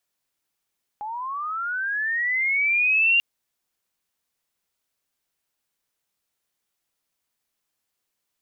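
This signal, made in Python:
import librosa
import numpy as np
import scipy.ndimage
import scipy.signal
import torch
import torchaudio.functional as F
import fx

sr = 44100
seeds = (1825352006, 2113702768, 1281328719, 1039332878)

y = fx.chirp(sr, length_s=2.19, from_hz=820.0, to_hz=2800.0, law='linear', from_db=-29.0, to_db=-15.0)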